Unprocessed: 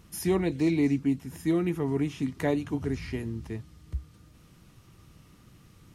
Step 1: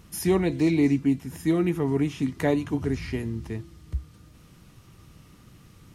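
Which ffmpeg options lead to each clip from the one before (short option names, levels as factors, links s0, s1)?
-af "bandreject=f=336.4:t=h:w=4,bandreject=f=672.8:t=h:w=4,bandreject=f=1009.2:t=h:w=4,bandreject=f=1345.6:t=h:w=4,bandreject=f=1682:t=h:w=4,bandreject=f=2018.4:t=h:w=4,bandreject=f=2354.8:t=h:w=4,bandreject=f=2691.2:t=h:w=4,bandreject=f=3027.6:t=h:w=4,bandreject=f=3364:t=h:w=4,bandreject=f=3700.4:t=h:w=4,bandreject=f=4036.8:t=h:w=4,bandreject=f=4373.2:t=h:w=4,bandreject=f=4709.6:t=h:w=4,bandreject=f=5046:t=h:w=4,bandreject=f=5382.4:t=h:w=4,bandreject=f=5718.8:t=h:w=4,bandreject=f=6055.2:t=h:w=4,bandreject=f=6391.6:t=h:w=4,bandreject=f=6728:t=h:w=4,bandreject=f=7064.4:t=h:w=4,bandreject=f=7400.8:t=h:w=4,bandreject=f=7737.2:t=h:w=4,bandreject=f=8073.6:t=h:w=4,bandreject=f=8410:t=h:w=4,bandreject=f=8746.4:t=h:w=4,bandreject=f=9082.8:t=h:w=4,bandreject=f=9419.2:t=h:w=4,volume=1.5"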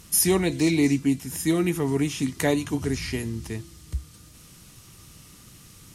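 -af "equalizer=f=9200:w=0.35:g=14.5"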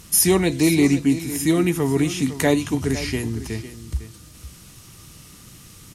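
-af "aecho=1:1:504:0.211,volume=1.58"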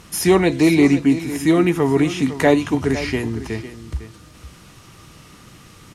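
-filter_complex "[0:a]asplit=2[s0][s1];[s1]highpass=f=720:p=1,volume=2.82,asoftclip=type=tanh:threshold=0.75[s2];[s0][s2]amix=inputs=2:normalize=0,lowpass=f=1200:p=1,volume=0.501,volume=1.78"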